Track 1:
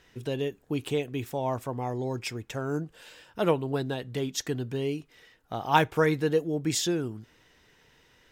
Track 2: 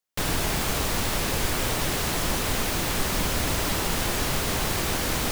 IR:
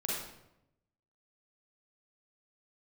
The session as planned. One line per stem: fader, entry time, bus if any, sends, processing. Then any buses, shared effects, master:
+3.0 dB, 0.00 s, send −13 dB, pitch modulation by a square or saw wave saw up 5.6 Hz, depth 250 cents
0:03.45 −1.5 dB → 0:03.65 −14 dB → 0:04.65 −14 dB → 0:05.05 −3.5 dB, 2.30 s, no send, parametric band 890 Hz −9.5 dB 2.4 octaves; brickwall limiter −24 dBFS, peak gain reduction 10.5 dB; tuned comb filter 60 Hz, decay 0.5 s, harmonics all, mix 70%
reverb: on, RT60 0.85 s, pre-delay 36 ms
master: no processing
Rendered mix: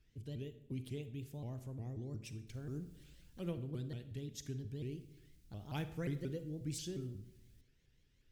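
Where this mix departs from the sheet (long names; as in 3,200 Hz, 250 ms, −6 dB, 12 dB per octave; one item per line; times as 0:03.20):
stem 2 −1.5 dB → −12.5 dB
master: extra guitar amp tone stack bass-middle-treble 10-0-1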